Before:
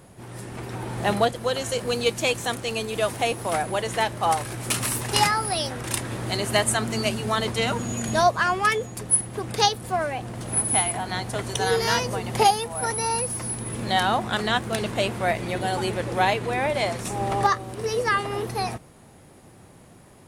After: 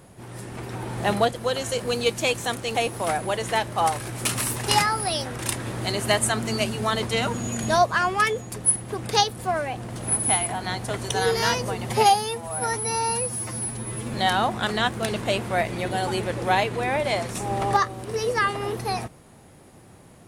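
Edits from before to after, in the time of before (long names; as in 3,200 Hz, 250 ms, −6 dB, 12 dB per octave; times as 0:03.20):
0:02.75–0:03.20: remove
0:12.34–0:13.84: time-stretch 1.5×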